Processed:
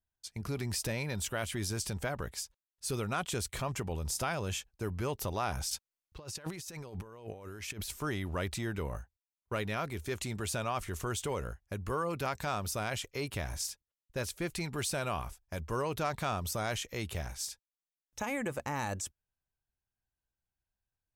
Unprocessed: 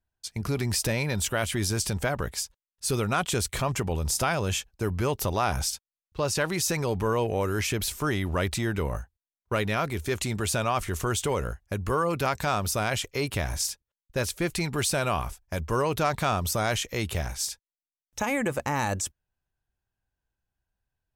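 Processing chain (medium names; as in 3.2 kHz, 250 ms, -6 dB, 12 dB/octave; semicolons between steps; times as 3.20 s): 5.71–7.91 s: compressor with a negative ratio -33 dBFS, ratio -0.5; trim -8 dB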